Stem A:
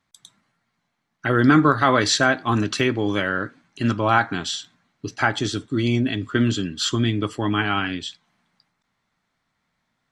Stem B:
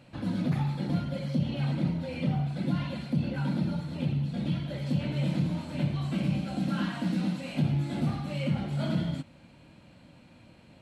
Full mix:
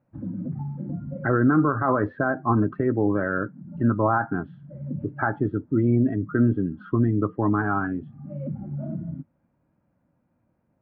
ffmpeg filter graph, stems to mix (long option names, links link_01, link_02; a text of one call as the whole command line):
ffmpeg -i stem1.wav -i stem2.wav -filter_complex "[0:a]alimiter=limit=-11.5dB:level=0:latency=1:release=49,adynamicequalizer=threshold=0.0158:dfrequency=1700:dqfactor=0.7:tfrequency=1700:tqfactor=0.7:attack=5:release=100:ratio=0.375:range=2:mode=cutabove:tftype=highshelf,volume=1dB,asplit=2[link_01][link_02];[1:a]acompressor=threshold=-30dB:ratio=4,volume=2dB[link_03];[link_02]apad=whole_len=476901[link_04];[link_03][link_04]sidechaincompress=threshold=-37dB:ratio=12:attack=47:release=390[link_05];[link_01][link_05]amix=inputs=2:normalize=0,lowpass=frequency=1600:width=0.5412,lowpass=frequency=1600:width=1.3066,afftdn=noise_reduction=17:noise_floor=-30" out.wav